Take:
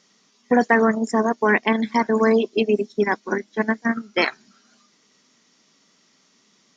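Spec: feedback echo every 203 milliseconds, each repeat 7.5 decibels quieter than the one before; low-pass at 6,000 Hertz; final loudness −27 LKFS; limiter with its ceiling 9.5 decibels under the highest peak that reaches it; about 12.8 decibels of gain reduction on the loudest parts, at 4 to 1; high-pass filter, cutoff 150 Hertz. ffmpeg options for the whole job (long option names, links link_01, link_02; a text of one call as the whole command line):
ffmpeg -i in.wav -af "highpass=150,lowpass=6000,acompressor=threshold=-29dB:ratio=4,alimiter=limit=-24dB:level=0:latency=1,aecho=1:1:203|406|609|812|1015:0.422|0.177|0.0744|0.0312|0.0131,volume=7dB" out.wav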